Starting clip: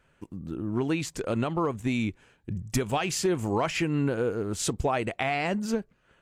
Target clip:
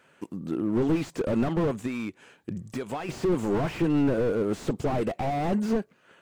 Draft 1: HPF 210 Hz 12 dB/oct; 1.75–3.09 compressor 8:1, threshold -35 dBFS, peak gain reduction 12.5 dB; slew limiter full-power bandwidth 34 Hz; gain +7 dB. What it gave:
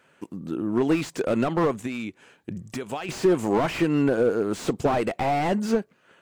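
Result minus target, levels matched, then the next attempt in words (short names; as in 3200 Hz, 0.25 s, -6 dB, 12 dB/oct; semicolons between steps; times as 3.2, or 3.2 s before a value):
slew limiter: distortion -7 dB
HPF 210 Hz 12 dB/oct; 1.75–3.09 compressor 8:1, threshold -35 dBFS, peak gain reduction 12.5 dB; slew limiter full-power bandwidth 14 Hz; gain +7 dB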